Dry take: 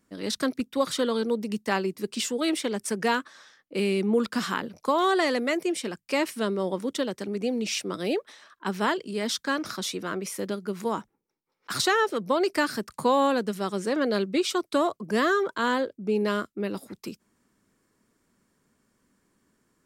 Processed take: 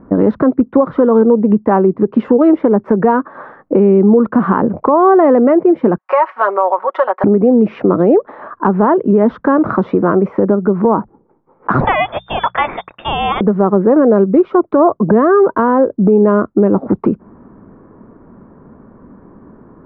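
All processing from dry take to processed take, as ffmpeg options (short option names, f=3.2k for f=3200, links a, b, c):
-filter_complex "[0:a]asettb=1/sr,asplit=3[a][b][c];[a]atrim=end=5.984[d];[b]atrim=start=5.98:end=7.24,asetpts=PTS-STARTPTS,afade=t=in:d=0.004:c=qsin,afade=t=out:st=1.256:d=0.004:c=qsin,highpass=f=800:w=0.5412,highpass=f=800:w=1.3066,aecho=1:1:5.4:0.79,atrim=end_sample=55566[e];[c]atrim=start=7.236[f];[d][e]acrossfade=d=0.004:c1=hsin:c2=qsin[g];[g][f]acrossfade=d=0.004:c1=qsin:c2=hsin,asettb=1/sr,asplit=3[h][i][j];[h]atrim=end=11.804[k];[i]atrim=start=11.8:end=13.41,asetpts=PTS-STARTPTS,afade=t=in:d=0.004:c=qsin,afade=t=out:st=1.606:d=0.004:c=qsin,lowpass=f=3.2k:t=q:w=0.5098,lowpass=f=3.2k:t=q:w=0.6013,lowpass=f=3.2k:t=q:w=0.9,lowpass=f=3.2k:t=q:w=2.563,afreqshift=-3800,bandreject=f=60:t=h:w=6,bandreject=f=120:t=h:w=6,bandreject=f=180:t=h:w=6[l];[j]atrim=start=13.406[m];[k][l]acrossfade=d=0.004:c1=hsin:c2=qsin[n];[n][m]acrossfade=d=0.004:c1=qsin:c2=hsin,lowpass=f=1.1k:w=0.5412,lowpass=f=1.1k:w=1.3066,acompressor=threshold=-38dB:ratio=5,alimiter=level_in=31.5dB:limit=-1dB:release=50:level=0:latency=1,volume=-1dB"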